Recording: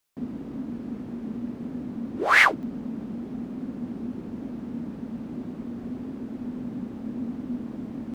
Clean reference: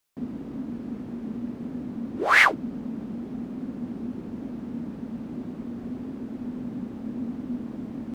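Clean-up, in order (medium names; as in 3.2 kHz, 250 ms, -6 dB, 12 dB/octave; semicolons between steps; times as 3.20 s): interpolate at 2.63 s, 1 ms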